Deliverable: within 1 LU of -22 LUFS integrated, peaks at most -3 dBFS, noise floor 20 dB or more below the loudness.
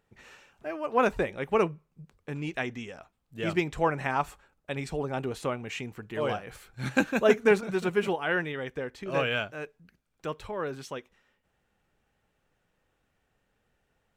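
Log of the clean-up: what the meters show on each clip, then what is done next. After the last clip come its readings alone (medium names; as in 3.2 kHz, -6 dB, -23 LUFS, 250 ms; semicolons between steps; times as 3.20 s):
loudness -29.5 LUFS; peak level -8.5 dBFS; loudness target -22.0 LUFS
-> trim +7.5 dB; peak limiter -3 dBFS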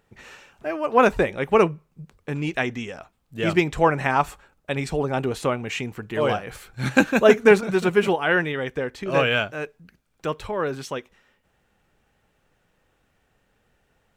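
loudness -22.5 LUFS; peak level -3.0 dBFS; noise floor -68 dBFS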